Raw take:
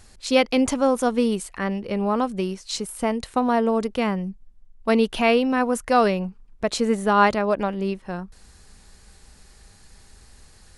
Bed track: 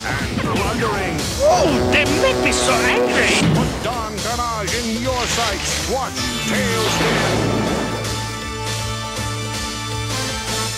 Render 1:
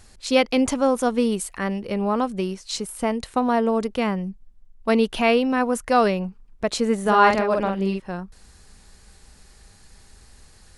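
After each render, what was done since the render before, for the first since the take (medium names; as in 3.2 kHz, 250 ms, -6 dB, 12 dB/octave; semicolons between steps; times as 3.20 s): 1.39–1.94 s: treble shelf 10 kHz +11.5 dB; 7.01–8.00 s: doubling 47 ms -3.5 dB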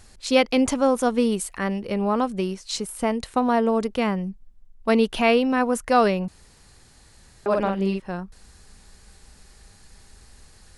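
6.28–7.46 s: room tone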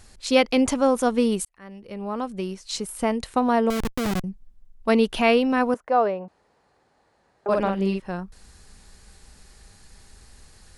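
1.45–2.97 s: fade in; 3.70–4.24 s: Schmitt trigger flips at -23.5 dBFS; 5.74–7.49 s: band-pass filter 670 Hz, Q 1.2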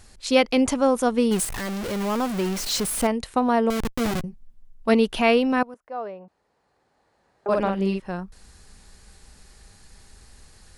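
1.31–3.07 s: jump at every zero crossing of -24.5 dBFS; 3.97–4.94 s: doubling 13 ms -7 dB; 5.63–7.53 s: fade in, from -21.5 dB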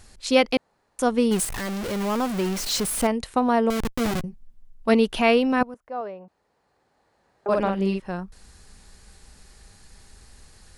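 0.57–0.99 s: room tone; 5.61–6.01 s: bass shelf 170 Hz +10.5 dB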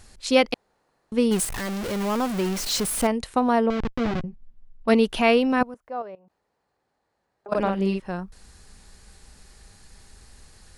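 0.54–1.12 s: room tone; 3.66–4.88 s: distance through air 200 m; 6.02–7.55 s: level held to a coarse grid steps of 19 dB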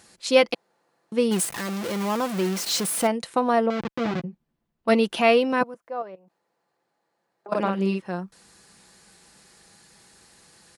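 high-pass 170 Hz 12 dB/octave; comb 5.9 ms, depth 34%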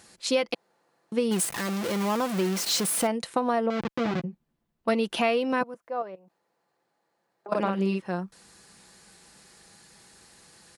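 compression 6:1, threshold -21 dBFS, peak gain reduction 9.5 dB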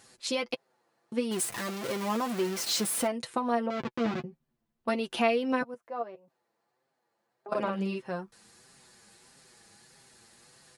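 flange 1.6 Hz, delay 7.3 ms, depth 1.8 ms, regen +20%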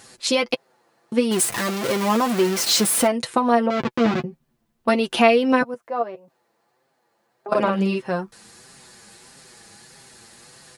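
trim +10.5 dB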